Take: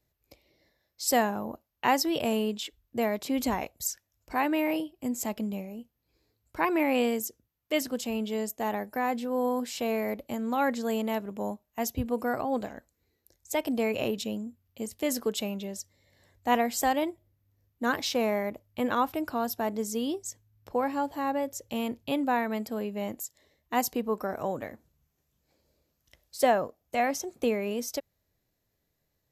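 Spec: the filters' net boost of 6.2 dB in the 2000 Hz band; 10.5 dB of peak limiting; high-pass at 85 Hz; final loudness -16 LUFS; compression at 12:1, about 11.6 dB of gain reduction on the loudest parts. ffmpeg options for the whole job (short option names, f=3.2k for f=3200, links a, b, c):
-af "highpass=85,equalizer=f=2k:t=o:g=7.5,acompressor=threshold=-28dB:ratio=12,volume=20dB,alimiter=limit=-5dB:level=0:latency=1"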